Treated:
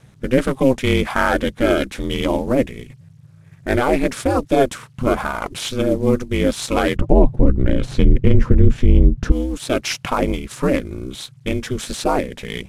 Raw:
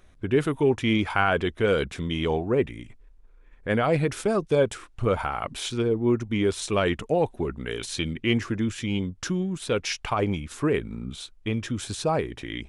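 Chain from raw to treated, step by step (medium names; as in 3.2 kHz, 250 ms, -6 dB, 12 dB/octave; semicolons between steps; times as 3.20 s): CVSD coder 64 kbps; ring modulator 130 Hz; 6.96–9.32 s: tilt EQ -4.5 dB/octave; loudness maximiser +10 dB; trim -1 dB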